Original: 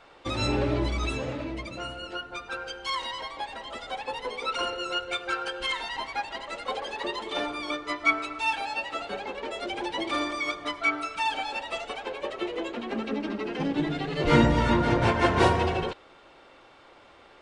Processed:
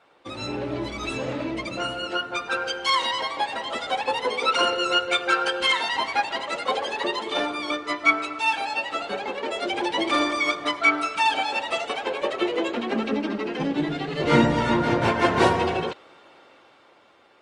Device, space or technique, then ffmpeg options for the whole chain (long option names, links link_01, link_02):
video call: -af "highpass=130,dynaudnorm=framelen=200:gausssize=13:maxgain=13dB,volume=-4dB" -ar 48000 -c:a libopus -b:a 32k